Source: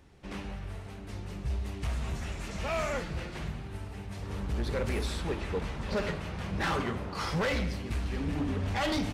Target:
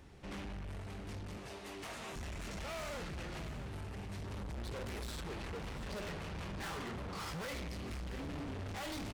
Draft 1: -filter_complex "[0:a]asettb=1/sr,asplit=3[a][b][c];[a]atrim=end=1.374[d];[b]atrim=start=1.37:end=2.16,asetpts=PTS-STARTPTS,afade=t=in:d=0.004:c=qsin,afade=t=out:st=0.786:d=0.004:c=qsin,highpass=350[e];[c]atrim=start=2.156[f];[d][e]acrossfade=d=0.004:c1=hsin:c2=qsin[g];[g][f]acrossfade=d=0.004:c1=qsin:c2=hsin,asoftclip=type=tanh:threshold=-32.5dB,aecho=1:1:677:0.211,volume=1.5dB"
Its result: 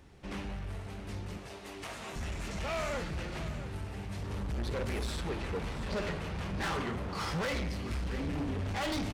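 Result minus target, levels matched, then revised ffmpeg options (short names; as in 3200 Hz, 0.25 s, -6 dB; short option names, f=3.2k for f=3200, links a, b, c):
soft clip: distortion -7 dB
-filter_complex "[0:a]asettb=1/sr,asplit=3[a][b][c];[a]atrim=end=1.374[d];[b]atrim=start=1.37:end=2.16,asetpts=PTS-STARTPTS,afade=t=in:d=0.004:c=qsin,afade=t=out:st=0.786:d=0.004:c=qsin,highpass=350[e];[c]atrim=start=2.156[f];[d][e]acrossfade=d=0.004:c1=hsin:c2=qsin[g];[g][f]acrossfade=d=0.004:c1=qsin:c2=hsin,asoftclip=type=tanh:threshold=-42.5dB,aecho=1:1:677:0.211,volume=1.5dB"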